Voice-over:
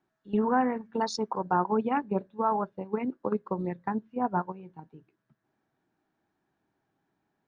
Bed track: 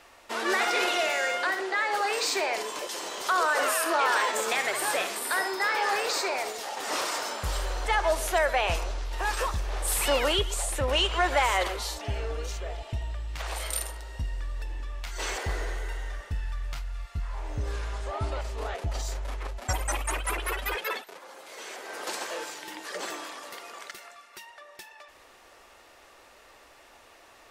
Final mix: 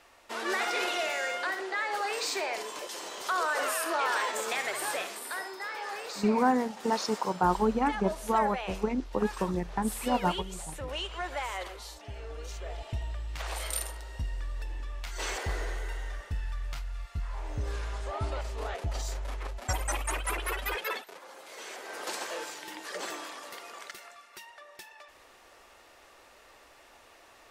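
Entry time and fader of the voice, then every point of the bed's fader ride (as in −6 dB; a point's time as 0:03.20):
5.90 s, +0.5 dB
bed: 0:04.85 −4.5 dB
0:05.60 −11 dB
0:12.12 −11 dB
0:12.81 −2 dB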